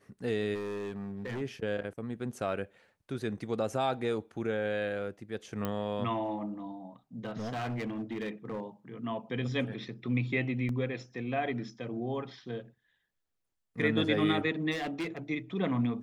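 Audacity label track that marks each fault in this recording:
0.540000	1.420000	clipped -33 dBFS
5.650000	5.650000	pop -19 dBFS
7.250000	8.640000	clipped -31.5 dBFS
10.690000	10.690000	gap 2.4 ms
14.710000	15.180000	clipped -30.5 dBFS

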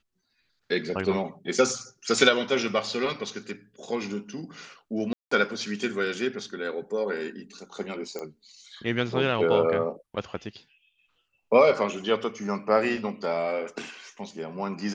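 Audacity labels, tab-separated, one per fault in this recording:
5.130000	5.310000	gap 0.184 s
8.190000	8.190000	pop -21 dBFS

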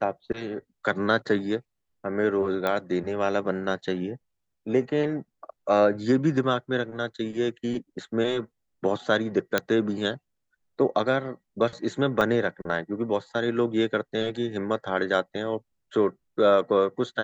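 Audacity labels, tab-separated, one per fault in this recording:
2.670000	2.670000	pop -14 dBFS
9.580000	9.580000	pop -8 dBFS
12.210000	12.210000	gap 3.1 ms

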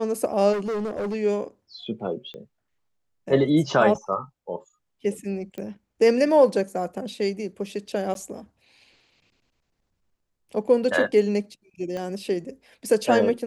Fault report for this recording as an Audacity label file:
0.520000	1.150000	clipped -24.5 dBFS
2.340000	2.340000	pop -27 dBFS
5.580000	5.580000	pop -22 dBFS
8.140000	8.150000	gap
11.970000	11.970000	pop -21 dBFS

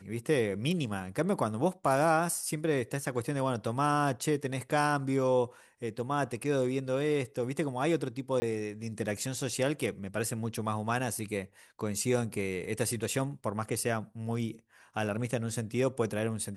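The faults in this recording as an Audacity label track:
8.400000	8.420000	gap 20 ms

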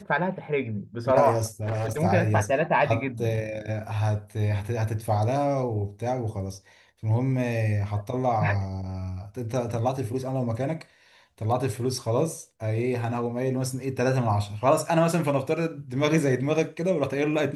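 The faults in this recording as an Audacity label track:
1.630000	2.000000	clipped -24.5 dBFS

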